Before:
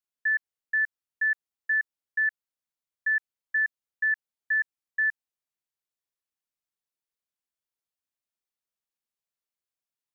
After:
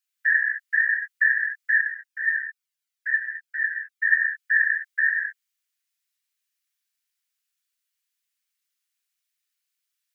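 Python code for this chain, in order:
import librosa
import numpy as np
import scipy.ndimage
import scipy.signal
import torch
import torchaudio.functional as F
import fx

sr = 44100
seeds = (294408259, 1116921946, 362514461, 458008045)

y = scipy.signal.sosfilt(scipy.signal.butter(4, 1500.0, 'highpass', fs=sr, output='sos'), x)
y = fx.dynamic_eq(y, sr, hz=1900.0, q=1.5, threshold_db=-40.0, ratio=4.0, max_db=-4)
y = fx.whisperise(y, sr, seeds[0])
y = fx.rev_gated(y, sr, seeds[1], gate_ms=230, shape='flat', drr_db=-0.5)
y = fx.comb_cascade(y, sr, direction='falling', hz=1.5, at=(1.8, 4.09), fade=0.02)
y = F.gain(torch.from_numpy(y), 8.0).numpy()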